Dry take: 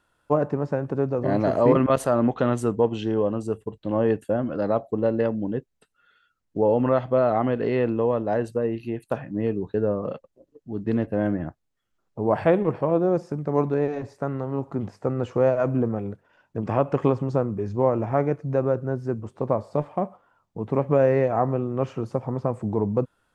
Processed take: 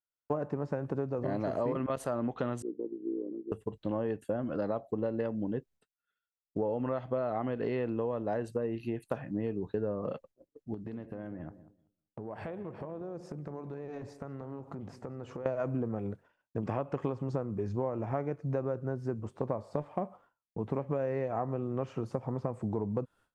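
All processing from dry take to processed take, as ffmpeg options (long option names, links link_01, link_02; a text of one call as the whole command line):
ffmpeg -i in.wav -filter_complex "[0:a]asettb=1/sr,asplit=3[link_01][link_02][link_03];[link_01]atrim=end=2.624[link_04];[link_02]atrim=start=2.62:end=3.52,asetpts=PTS-STARTPTS,afade=type=in:duration=0.004:curve=qsin,afade=type=out:start_time=0.896:duration=0.004:curve=qsin,asuperpass=centerf=330:order=4:qfactor=3.1,tremolo=f=62:d=0.667[link_05];[link_03]atrim=start=3.516[link_06];[link_04][link_05]acrossfade=duration=0.004:curve1=hsin:curve2=qsin[link_07];[link_07][link_06]acrossfade=duration=0.004:curve1=qsin:curve2=hsin,asettb=1/sr,asplit=3[link_08][link_09][link_10];[link_08]atrim=end=10.744[link_11];[link_09]atrim=start=10.74:end=15.46,asetpts=PTS-STARTPTS,afade=type=in:duration=0.004:curve=qsin,afade=type=out:start_time=4.716:duration=0.004:curve=qsin,acompressor=threshold=-34dB:ratio=8:attack=3.2:release=140:knee=1:detection=peak,asplit=2[link_12][link_13];[link_13]adelay=191,lowpass=frequency=960:poles=1,volume=-13dB,asplit=2[link_14][link_15];[link_15]adelay=191,lowpass=frequency=960:poles=1,volume=0.54,asplit=2[link_16][link_17];[link_17]adelay=191,lowpass=frequency=960:poles=1,volume=0.54,asplit=2[link_18][link_19];[link_19]adelay=191,lowpass=frequency=960:poles=1,volume=0.54,asplit=2[link_20][link_21];[link_21]adelay=191,lowpass=frequency=960:poles=1,volume=0.54,asplit=2[link_22][link_23];[link_23]adelay=191,lowpass=frequency=960:poles=1,volume=0.54[link_24];[link_12][link_14][link_16][link_18][link_20][link_22][link_24]amix=inputs=7:normalize=0,atrim=end_sample=208152[link_25];[link_10]atrim=start=15.456[link_26];[link_11][link_25]acrossfade=duration=0.004:curve1=hsin:curve2=qsin[link_27];[link_27][link_26]acrossfade=duration=0.004:curve1=qsin:curve2=hsin,agate=range=-33dB:threshold=-47dB:ratio=3:detection=peak,acompressor=threshold=-26dB:ratio=6,volume=-3dB" out.wav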